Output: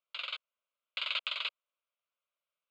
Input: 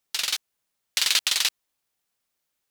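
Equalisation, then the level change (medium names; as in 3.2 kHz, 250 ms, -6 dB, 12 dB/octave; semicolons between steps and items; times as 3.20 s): elliptic band-pass 570–7400 Hz, stop band 40 dB; distance through air 310 m; static phaser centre 1.2 kHz, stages 8; -2.0 dB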